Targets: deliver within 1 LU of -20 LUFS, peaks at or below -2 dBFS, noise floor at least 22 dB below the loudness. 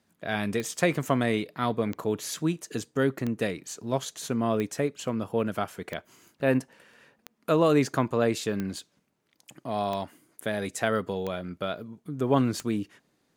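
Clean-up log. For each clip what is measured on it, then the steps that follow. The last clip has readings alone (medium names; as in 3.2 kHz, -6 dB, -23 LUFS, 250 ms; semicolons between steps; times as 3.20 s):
clicks found 10; loudness -28.5 LUFS; peak level -8.5 dBFS; loudness target -20.0 LUFS
-> de-click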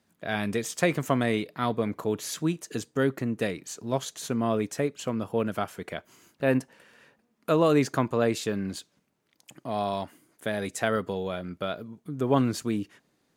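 clicks found 0; loudness -28.5 LUFS; peak level -8.5 dBFS; loudness target -20.0 LUFS
-> trim +8.5 dB; peak limiter -2 dBFS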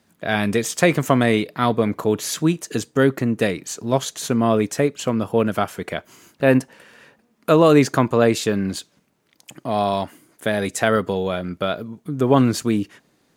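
loudness -20.5 LUFS; peak level -2.0 dBFS; noise floor -64 dBFS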